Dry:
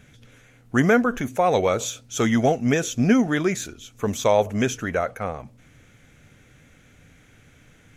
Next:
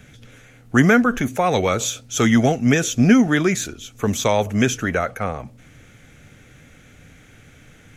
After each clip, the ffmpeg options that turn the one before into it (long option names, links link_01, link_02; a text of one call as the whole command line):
ffmpeg -i in.wav -filter_complex "[0:a]bandreject=frequency=1000:width=18,acrossover=split=380|840|2600[link_01][link_02][link_03][link_04];[link_02]acompressor=threshold=-34dB:ratio=6[link_05];[link_01][link_05][link_03][link_04]amix=inputs=4:normalize=0,volume=5.5dB" out.wav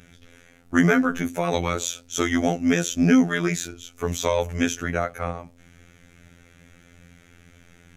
ffmpeg -i in.wav -af "afftfilt=real='hypot(re,im)*cos(PI*b)':imag='0':win_size=2048:overlap=0.75,volume=-1dB" out.wav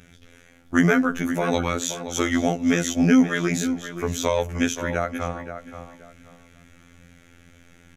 ffmpeg -i in.wav -filter_complex "[0:a]asplit=2[link_01][link_02];[link_02]adelay=526,lowpass=frequency=2800:poles=1,volume=-10dB,asplit=2[link_03][link_04];[link_04]adelay=526,lowpass=frequency=2800:poles=1,volume=0.25,asplit=2[link_05][link_06];[link_06]adelay=526,lowpass=frequency=2800:poles=1,volume=0.25[link_07];[link_01][link_03][link_05][link_07]amix=inputs=4:normalize=0" out.wav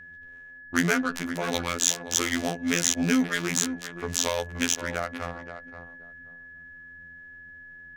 ffmpeg -i in.wav -af "crystalizer=i=6.5:c=0,adynamicsmooth=sensitivity=1.5:basefreq=600,aeval=exprs='val(0)+0.0158*sin(2*PI*1700*n/s)':channel_layout=same,volume=-7.5dB" out.wav